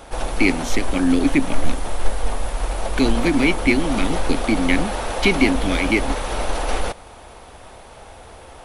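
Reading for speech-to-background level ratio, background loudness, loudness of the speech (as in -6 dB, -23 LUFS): 6.5 dB, -27.0 LUFS, -20.5 LUFS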